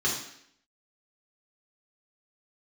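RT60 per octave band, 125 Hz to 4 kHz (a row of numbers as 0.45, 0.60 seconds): 0.60, 0.75, 0.70, 0.70, 0.75, 0.70 seconds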